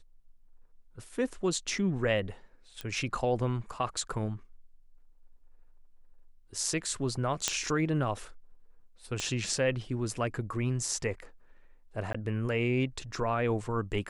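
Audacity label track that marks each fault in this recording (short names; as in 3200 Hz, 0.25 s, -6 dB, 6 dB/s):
2.810000	2.810000	pop -22 dBFS
7.480000	7.480000	pop -10 dBFS
9.200000	9.200000	pop -18 dBFS
12.130000	12.140000	gap 15 ms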